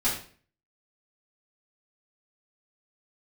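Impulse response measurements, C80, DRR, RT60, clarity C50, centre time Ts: 9.5 dB, -11.0 dB, 0.45 s, 5.5 dB, 33 ms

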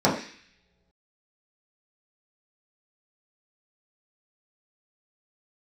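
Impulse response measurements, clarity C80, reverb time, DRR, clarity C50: 10.0 dB, not exponential, -7.0 dB, 7.0 dB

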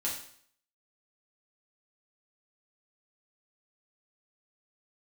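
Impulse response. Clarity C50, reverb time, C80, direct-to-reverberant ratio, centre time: 5.0 dB, 0.60 s, 8.5 dB, -5.0 dB, 33 ms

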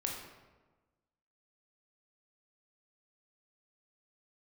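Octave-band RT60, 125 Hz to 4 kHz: 1.4, 1.4, 1.3, 1.2, 1.0, 0.75 s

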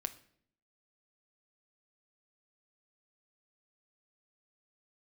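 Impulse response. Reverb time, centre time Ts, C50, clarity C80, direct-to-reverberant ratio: 0.60 s, 5 ms, 15.5 dB, 19.0 dB, 9.0 dB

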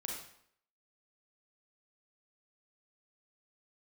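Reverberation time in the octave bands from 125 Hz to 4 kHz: 0.60, 0.65, 0.65, 0.65, 0.65, 0.55 s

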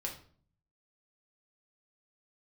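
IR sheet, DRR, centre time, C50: -0.5 dB, 19 ms, 8.5 dB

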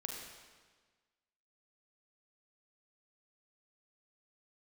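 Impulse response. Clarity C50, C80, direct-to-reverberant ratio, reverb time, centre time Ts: 2.0 dB, 3.5 dB, 0.0 dB, 1.5 s, 68 ms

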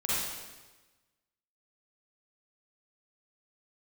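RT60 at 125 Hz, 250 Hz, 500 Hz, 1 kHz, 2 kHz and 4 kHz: 1.3, 1.3, 1.2, 1.2, 1.2, 1.1 s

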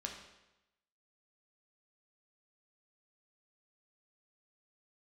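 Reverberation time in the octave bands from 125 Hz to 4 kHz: 0.95, 0.95, 0.95, 0.95, 0.90, 0.85 s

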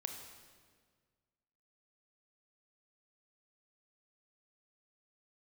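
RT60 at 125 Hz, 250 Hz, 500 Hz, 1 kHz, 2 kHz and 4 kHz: 2.2, 1.9, 1.8, 1.6, 1.5, 1.4 s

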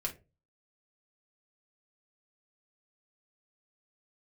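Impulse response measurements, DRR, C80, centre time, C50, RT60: -1.0 dB, 22.0 dB, 10 ms, 14.0 dB, 0.30 s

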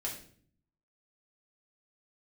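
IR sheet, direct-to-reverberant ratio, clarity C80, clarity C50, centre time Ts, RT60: -3.5 dB, 10.5 dB, 6.5 dB, 27 ms, 0.50 s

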